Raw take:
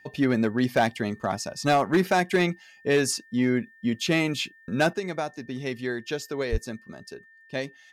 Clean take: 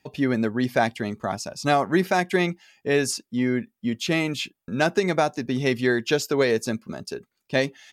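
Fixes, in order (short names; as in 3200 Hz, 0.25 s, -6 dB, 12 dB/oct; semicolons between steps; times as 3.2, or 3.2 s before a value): clip repair -14.5 dBFS; notch 1800 Hz, Q 30; 6.51–6.63 HPF 140 Hz 24 dB/oct; gain 0 dB, from 4.93 s +8.5 dB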